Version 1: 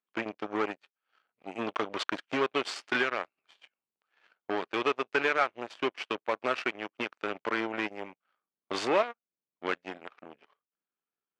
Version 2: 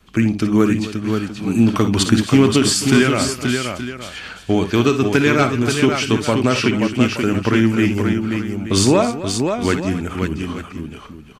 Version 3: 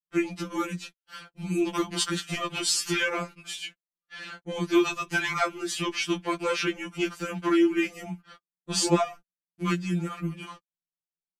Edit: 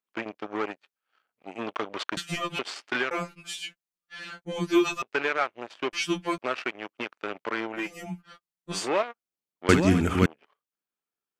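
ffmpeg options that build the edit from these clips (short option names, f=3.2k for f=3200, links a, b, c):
-filter_complex "[2:a]asplit=4[a][b][c][d];[0:a]asplit=6[e][f][g][h][i][j];[e]atrim=end=2.172[k];[a]atrim=start=2.168:end=2.592[l];[f]atrim=start=2.588:end=3.112[m];[b]atrim=start=3.108:end=5.022[n];[g]atrim=start=5.018:end=5.932[o];[c]atrim=start=5.928:end=6.382[p];[h]atrim=start=6.378:end=7.95[q];[d]atrim=start=7.71:end=8.9[r];[i]atrim=start=8.66:end=9.692[s];[1:a]atrim=start=9.688:end=10.262[t];[j]atrim=start=10.258[u];[k][l]acrossfade=d=0.004:c1=hsin:c2=hsin[v];[v][m]acrossfade=d=0.004:c1=hsin:c2=hsin[w];[w][n]acrossfade=d=0.004:c1=hsin:c2=hsin[x];[x][o]acrossfade=d=0.004:c1=hsin:c2=hsin[y];[y][p]acrossfade=d=0.004:c1=hsin:c2=hsin[z];[z][q]acrossfade=d=0.004:c1=hsin:c2=hsin[aa];[aa][r]acrossfade=d=0.24:c1=tri:c2=tri[ab];[ab][s]acrossfade=d=0.24:c1=tri:c2=tri[ac];[ac][t]acrossfade=d=0.004:c1=hsin:c2=hsin[ad];[ad][u]acrossfade=d=0.004:c1=hsin:c2=hsin"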